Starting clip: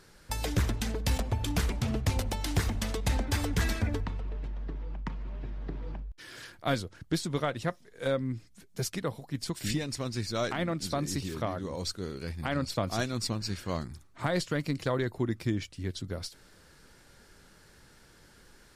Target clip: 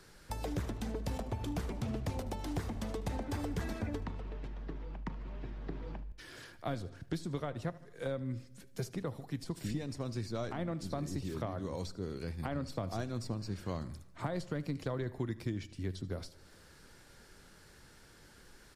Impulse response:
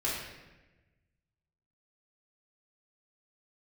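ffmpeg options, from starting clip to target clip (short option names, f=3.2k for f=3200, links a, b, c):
-filter_complex "[0:a]asplit=2[a][b];[b]aecho=0:1:75|150|225:0.1|0.04|0.016[c];[a][c]amix=inputs=2:normalize=0,acrossover=split=140|1100[d][e][f];[d]acompressor=threshold=-39dB:ratio=4[g];[e]acompressor=threshold=-35dB:ratio=4[h];[f]acompressor=threshold=-50dB:ratio=4[i];[g][h][i]amix=inputs=3:normalize=0,asplit=2[j][k];[1:a]atrim=start_sample=2205[l];[k][l]afir=irnorm=-1:irlink=0,volume=-25dB[m];[j][m]amix=inputs=2:normalize=0,volume=-1.5dB"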